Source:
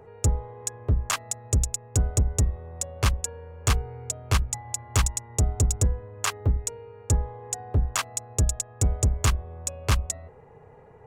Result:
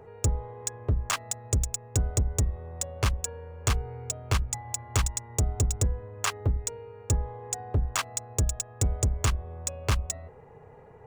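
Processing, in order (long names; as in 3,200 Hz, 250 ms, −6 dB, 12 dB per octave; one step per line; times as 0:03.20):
running median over 3 samples
downward compressor 2 to 1, threshold −23 dBFS, peak gain reduction 4 dB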